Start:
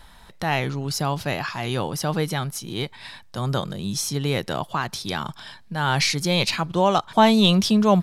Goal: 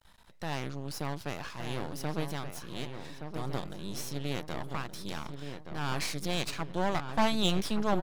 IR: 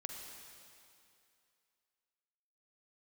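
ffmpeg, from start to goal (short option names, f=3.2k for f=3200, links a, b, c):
-filter_complex "[0:a]aeval=exprs='max(val(0),0)':c=same,asplit=2[a][b];[b]adelay=1172,lowpass=f=2.1k:p=1,volume=-7dB,asplit=2[c][d];[d]adelay=1172,lowpass=f=2.1k:p=1,volume=0.47,asplit=2[e][f];[f]adelay=1172,lowpass=f=2.1k:p=1,volume=0.47,asplit=2[g][h];[h]adelay=1172,lowpass=f=2.1k:p=1,volume=0.47,asplit=2[i][j];[j]adelay=1172,lowpass=f=2.1k:p=1,volume=0.47,asplit=2[k][l];[l]adelay=1172,lowpass=f=2.1k:p=1,volume=0.47[m];[a][c][e][g][i][k][m]amix=inputs=7:normalize=0,volume=-8.5dB"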